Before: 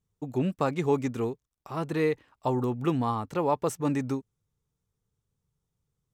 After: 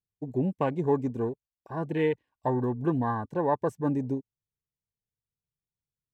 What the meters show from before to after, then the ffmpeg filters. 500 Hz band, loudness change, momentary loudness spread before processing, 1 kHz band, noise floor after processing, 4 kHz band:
0.0 dB, 0.0 dB, 7 LU, -0.5 dB, under -85 dBFS, no reading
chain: -af "afwtdn=0.0178,asuperstop=centerf=1300:order=12:qfactor=5.2"

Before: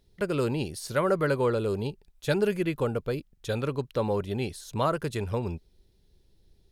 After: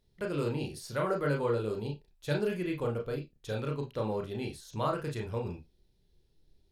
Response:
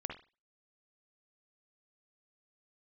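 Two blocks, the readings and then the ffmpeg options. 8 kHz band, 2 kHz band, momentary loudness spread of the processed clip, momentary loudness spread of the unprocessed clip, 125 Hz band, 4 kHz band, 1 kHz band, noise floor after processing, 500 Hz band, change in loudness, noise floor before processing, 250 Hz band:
-7.5 dB, -5.5 dB, 9 LU, 9 LU, -4.0 dB, -5.5 dB, -5.0 dB, -70 dBFS, -5.0 dB, -5.0 dB, -65 dBFS, -5.0 dB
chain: -filter_complex "[1:a]atrim=start_sample=2205,afade=t=out:st=0.27:d=0.01,atrim=end_sample=12348,asetrate=74970,aresample=44100[s0];[0:a][s0]afir=irnorm=-1:irlink=0"

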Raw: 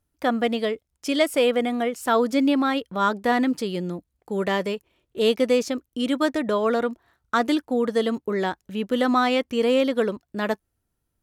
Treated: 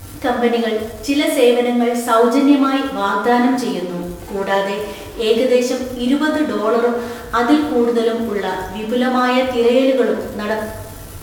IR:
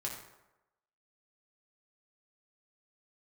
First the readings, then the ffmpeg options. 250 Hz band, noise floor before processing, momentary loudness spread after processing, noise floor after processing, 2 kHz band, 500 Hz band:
+7.0 dB, -78 dBFS, 10 LU, -32 dBFS, +6.0 dB, +7.0 dB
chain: -filter_complex "[0:a]aeval=exprs='val(0)+0.5*0.0251*sgn(val(0))':c=same[s0];[1:a]atrim=start_sample=2205,asetrate=34839,aresample=44100[s1];[s0][s1]afir=irnorm=-1:irlink=0,volume=1.33"

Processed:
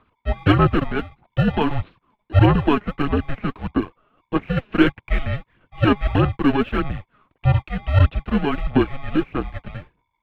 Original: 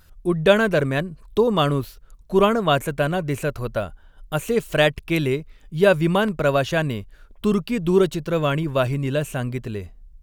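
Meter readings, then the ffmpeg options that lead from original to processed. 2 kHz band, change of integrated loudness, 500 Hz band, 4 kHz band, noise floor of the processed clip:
-2.5 dB, +0.5 dB, -6.0 dB, -4.0 dB, -75 dBFS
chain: -filter_complex "[0:a]highshelf=f=2500:g=-9,asplit=2[s0][s1];[s1]acrusher=samples=35:mix=1:aa=0.000001,volume=0.562[s2];[s0][s2]amix=inputs=2:normalize=0,highpass=f=300:t=q:w=0.5412,highpass=f=300:t=q:w=1.307,lowpass=f=3500:t=q:w=0.5176,lowpass=f=3500:t=q:w=0.7071,lowpass=f=3500:t=q:w=1.932,afreqshift=-290,aphaser=in_gain=1:out_gain=1:delay=4.9:decay=0.49:speed=1.6:type=sinusoidal"

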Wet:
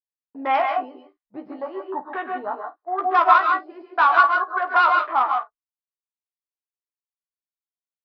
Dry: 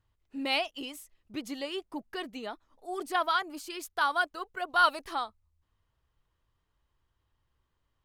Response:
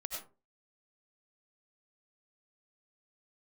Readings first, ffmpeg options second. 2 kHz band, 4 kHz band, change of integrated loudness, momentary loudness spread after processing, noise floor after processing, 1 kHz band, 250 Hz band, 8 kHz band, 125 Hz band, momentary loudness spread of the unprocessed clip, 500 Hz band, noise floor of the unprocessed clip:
+9.5 dB, -3.0 dB, +11.5 dB, 17 LU, under -85 dBFS, +13.5 dB, +2.0 dB, under -15 dB, no reading, 16 LU, +8.5 dB, -79 dBFS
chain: -filter_complex "[0:a]highshelf=f=2300:t=q:w=1.5:g=-8.5,alimiter=limit=0.133:level=0:latency=1:release=389,acrossover=split=2800[s0][s1];[s1]acompressor=threshold=0.00178:ratio=4:attack=1:release=60[s2];[s0][s2]amix=inputs=2:normalize=0,asplit=2[s3][s4];[s4]adelay=16,volume=0.376[s5];[s3][s5]amix=inputs=2:normalize=0,afwtdn=0.01,aresample=11025,aeval=exprs='clip(val(0),-1,0.0473)':c=same,aresample=44100,agate=range=0.0224:threshold=0.00447:ratio=3:detection=peak,equalizer=f=1000:t=o:w=1.8:g=11,acontrast=27,highpass=f=460:p=1,aecho=1:1:15|51:0.422|0.158[s6];[1:a]atrim=start_sample=2205,atrim=end_sample=3969,asetrate=24696,aresample=44100[s7];[s6][s7]afir=irnorm=-1:irlink=0,volume=0.891"

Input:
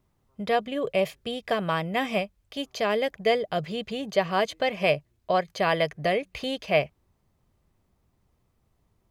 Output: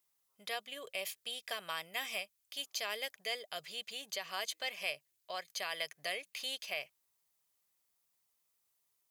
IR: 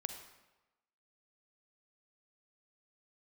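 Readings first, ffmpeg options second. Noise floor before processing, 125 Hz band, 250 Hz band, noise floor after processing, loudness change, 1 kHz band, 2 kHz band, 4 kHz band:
-71 dBFS, -32.0 dB, -28.5 dB, -80 dBFS, -13.0 dB, -17.0 dB, -9.5 dB, -4.5 dB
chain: -af "equalizer=f=220:w=1.5:g=-2.5,alimiter=limit=0.168:level=0:latency=1:release=105,aderivative,volume=1.41"

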